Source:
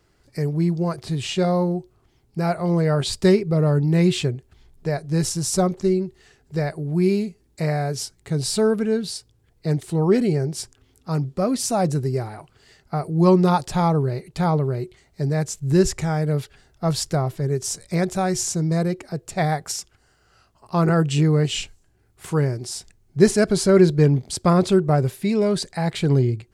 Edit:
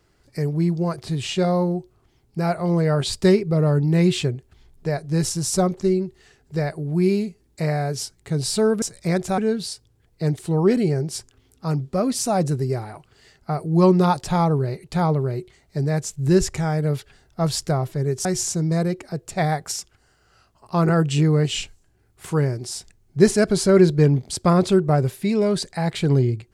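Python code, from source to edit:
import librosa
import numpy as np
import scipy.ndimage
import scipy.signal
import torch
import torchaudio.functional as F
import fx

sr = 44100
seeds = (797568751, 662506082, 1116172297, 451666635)

y = fx.edit(x, sr, fx.move(start_s=17.69, length_s=0.56, to_s=8.82), tone=tone)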